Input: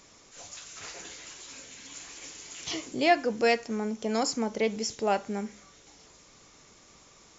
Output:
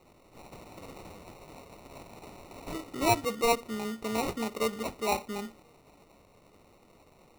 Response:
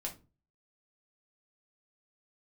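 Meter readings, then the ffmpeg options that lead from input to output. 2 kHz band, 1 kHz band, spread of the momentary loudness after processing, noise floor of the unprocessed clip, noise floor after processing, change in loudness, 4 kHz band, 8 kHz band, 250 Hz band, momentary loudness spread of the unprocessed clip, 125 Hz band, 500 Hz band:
-5.0 dB, -1.5 dB, 22 LU, -57 dBFS, -61 dBFS, -1.5 dB, -3.5 dB, n/a, -3.5 dB, 18 LU, +3.0 dB, -3.5 dB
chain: -filter_complex "[0:a]asplit=2[a][b];[1:a]atrim=start_sample=2205,asetrate=79380,aresample=44100[c];[b][c]afir=irnorm=-1:irlink=0,volume=-3dB[d];[a][d]amix=inputs=2:normalize=0,acrusher=samples=27:mix=1:aa=0.000001,volume=-5.5dB"

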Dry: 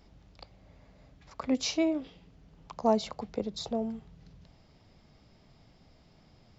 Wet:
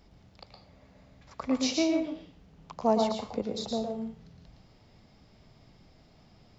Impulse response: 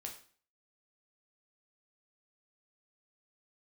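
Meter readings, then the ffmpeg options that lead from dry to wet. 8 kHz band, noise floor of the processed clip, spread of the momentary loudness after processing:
n/a, -60 dBFS, 15 LU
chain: -filter_complex "[0:a]asplit=2[a][b];[1:a]atrim=start_sample=2205,adelay=114[c];[b][c]afir=irnorm=-1:irlink=0,volume=0.5dB[d];[a][d]amix=inputs=2:normalize=0"

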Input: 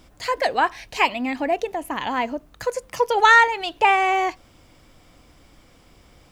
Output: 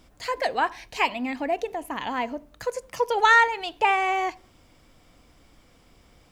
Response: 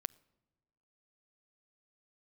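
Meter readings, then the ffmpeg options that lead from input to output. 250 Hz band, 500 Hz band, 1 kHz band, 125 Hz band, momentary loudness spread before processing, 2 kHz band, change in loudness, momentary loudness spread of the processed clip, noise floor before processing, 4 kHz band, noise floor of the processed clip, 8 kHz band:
-4.0 dB, -4.0 dB, -4.0 dB, n/a, 15 LU, -4.0 dB, -4.0 dB, 15 LU, -54 dBFS, -4.0 dB, -58 dBFS, -4.0 dB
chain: -filter_complex "[1:a]atrim=start_sample=2205,afade=t=out:st=0.41:d=0.01,atrim=end_sample=18522,asetrate=70560,aresample=44100[a];[0:a][a]afir=irnorm=-1:irlink=0,volume=2dB"

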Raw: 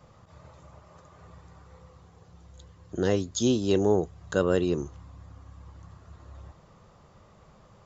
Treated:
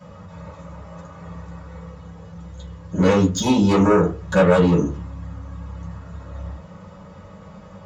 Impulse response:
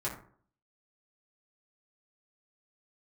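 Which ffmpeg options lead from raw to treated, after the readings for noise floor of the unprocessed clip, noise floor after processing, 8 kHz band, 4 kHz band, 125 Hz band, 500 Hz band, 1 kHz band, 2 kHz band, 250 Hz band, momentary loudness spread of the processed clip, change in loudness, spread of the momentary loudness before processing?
-57 dBFS, -42 dBFS, n/a, +6.0 dB, +11.5 dB, +7.0 dB, +13.5 dB, +11.0 dB, +10.0 dB, 21 LU, +9.0 dB, 8 LU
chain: -filter_complex "[0:a]aeval=exprs='0.355*sin(PI/2*3.16*val(0)/0.355)':c=same[a];[1:a]atrim=start_sample=2205,asetrate=66150,aresample=44100[b];[a][b]afir=irnorm=-1:irlink=0,volume=-3.5dB"

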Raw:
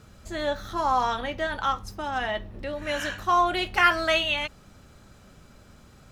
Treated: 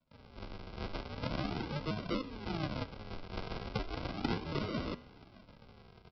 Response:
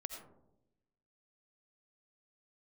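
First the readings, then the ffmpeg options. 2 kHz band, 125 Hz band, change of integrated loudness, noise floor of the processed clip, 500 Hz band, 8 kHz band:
-19.0 dB, +1.5 dB, -14.0 dB, -60 dBFS, -12.5 dB, under -20 dB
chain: -filter_complex "[0:a]acrossover=split=340|4100[a][b][c];[a]adelay=110[d];[b]adelay=470[e];[d][e][c]amix=inputs=3:normalize=0,aresample=11025,acrusher=samples=26:mix=1:aa=0.000001:lfo=1:lforange=26:lforate=0.37,aresample=44100,flanger=delay=8:depth=2.8:regen=-88:speed=0.52:shape=triangular,acrossover=split=350|700[f][g][h];[f]acompressor=threshold=-36dB:ratio=4[i];[g]acompressor=threshold=-48dB:ratio=4[j];[h]acompressor=threshold=-46dB:ratio=4[k];[i][j][k]amix=inputs=3:normalize=0,asuperstop=centerf=1800:order=12:qfactor=7.1,lowshelf=f=150:g=-10,volume=5dB"

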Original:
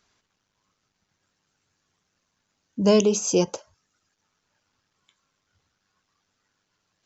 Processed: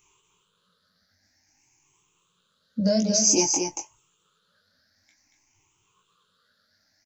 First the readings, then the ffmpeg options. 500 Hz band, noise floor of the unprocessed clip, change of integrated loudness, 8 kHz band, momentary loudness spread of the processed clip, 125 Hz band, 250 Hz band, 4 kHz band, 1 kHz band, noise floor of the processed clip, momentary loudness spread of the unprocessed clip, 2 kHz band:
-6.0 dB, -77 dBFS, -0.5 dB, n/a, 17 LU, -2.0 dB, -1.0 dB, +5.5 dB, -0.5 dB, -71 dBFS, 20 LU, -1.5 dB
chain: -filter_complex "[0:a]afftfilt=real='re*pow(10,21/40*sin(2*PI*(0.69*log(max(b,1)*sr/1024/100)/log(2)-(0.53)*(pts-256)/sr)))':imag='im*pow(10,21/40*sin(2*PI*(0.69*log(max(b,1)*sr/1024/100)/log(2)-(0.53)*(pts-256)/sr)))':win_size=1024:overlap=0.75,bandreject=f=720:w=12,acompressor=threshold=-16dB:ratio=12,highshelf=f=3.5k:g=7.5,flanger=delay=16:depth=5:speed=2.9,asplit=2[a][b];[b]adelay=23,volume=-11.5dB[c];[a][c]amix=inputs=2:normalize=0,asplit=2[d][e];[e]aecho=0:1:232:0.531[f];[d][f]amix=inputs=2:normalize=0"

